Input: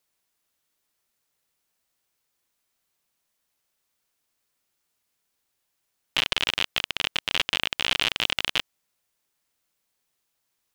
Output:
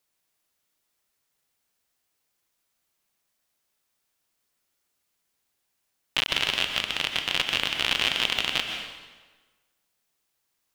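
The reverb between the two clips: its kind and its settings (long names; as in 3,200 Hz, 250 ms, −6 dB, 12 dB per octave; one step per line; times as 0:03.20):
dense smooth reverb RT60 1.3 s, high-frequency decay 0.85×, pre-delay 110 ms, DRR 4 dB
level −1 dB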